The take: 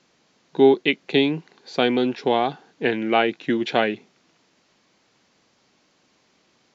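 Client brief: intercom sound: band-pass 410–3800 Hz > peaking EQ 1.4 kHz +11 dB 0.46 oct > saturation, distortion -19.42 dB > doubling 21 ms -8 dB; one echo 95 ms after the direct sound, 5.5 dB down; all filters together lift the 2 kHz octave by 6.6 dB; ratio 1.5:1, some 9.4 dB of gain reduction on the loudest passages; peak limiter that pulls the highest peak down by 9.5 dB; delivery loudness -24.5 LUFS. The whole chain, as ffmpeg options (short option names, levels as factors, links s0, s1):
-filter_complex "[0:a]equalizer=f=2000:t=o:g=3.5,acompressor=threshold=0.0158:ratio=1.5,alimiter=limit=0.112:level=0:latency=1,highpass=410,lowpass=3800,equalizer=f=1400:t=o:w=0.46:g=11,aecho=1:1:95:0.531,asoftclip=threshold=0.0944,asplit=2[s0][s1];[s1]adelay=21,volume=0.398[s2];[s0][s2]amix=inputs=2:normalize=0,volume=2.51"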